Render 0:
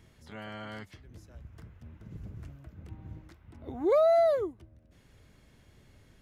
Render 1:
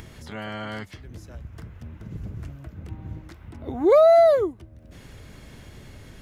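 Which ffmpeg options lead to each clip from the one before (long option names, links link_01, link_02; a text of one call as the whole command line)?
ffmpeg -i in.wav -af "acompressor=mode=upward:threshold=-44dB:ratio=2.5,volume=8.5dB" out.wav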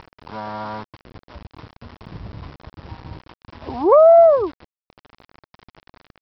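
ffmpeg -i in.wav -af "lowpass=frequency=1000:width_type=q:width=6.6,aresample=11025,aeval=exprs='val(0)*gte(abs(val(0)),0.0158)':channel_layout=same,aresample=44100" out.wav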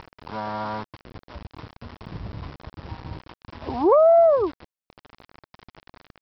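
ffmpeg -i in.wav -af "acompressor=threshold=-15dB:ratio=2.5" out.wav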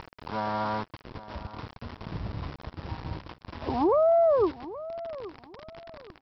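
ffmpeg -i in.wav -af "alimiter=limit=-16.5dB:level=0:latency=1:release=56,aecho=1:1:824|1648|2472:0.158|0.046|0.0133" out.wav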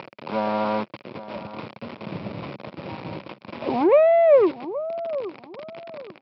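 ffmpeg -i in.wav -af "asoftclip=type=tanh:threshold=-20dB,highpass=frequency=130:width=0.5412,highpass=frequency=130:width=1.3066,equalizer=frequency=210:width_type=q:width=4:gain=5,equalizer=frequency=360:width_type=q:width=4:gain=4,equalizer=frequency=560:width_type=q:width=4:gain=9,equalizer=frequency=1700:width_type=q:width=4:gain=-4,equalizer=frequency=2400:width_type=q:width=4:gain=8,lowpass=frequency=4800:width=0.5412,lowpass=frequency=4800:width=1.3066,volume=4dB" out.wav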